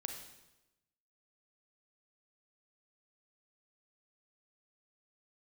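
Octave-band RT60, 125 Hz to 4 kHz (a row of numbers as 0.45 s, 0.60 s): 1.1 s, 1.1 s, 1.0 s, 0.95 s, 0.90 s, 0.90 s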